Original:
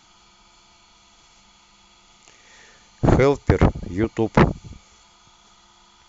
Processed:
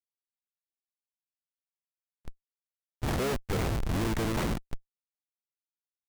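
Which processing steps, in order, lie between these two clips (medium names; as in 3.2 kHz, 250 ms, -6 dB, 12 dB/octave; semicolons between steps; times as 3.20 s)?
de-hum 111.3 Hz, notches 6; Schmitt trigger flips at -30 dBFS; harmony voices -12 st -9 dB, +3 st -17 dB; trim -5 dB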